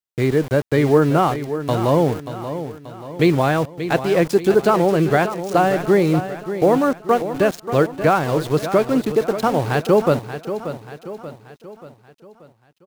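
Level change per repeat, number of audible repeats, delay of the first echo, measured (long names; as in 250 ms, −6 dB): −6.5 dB, 4, 583 ms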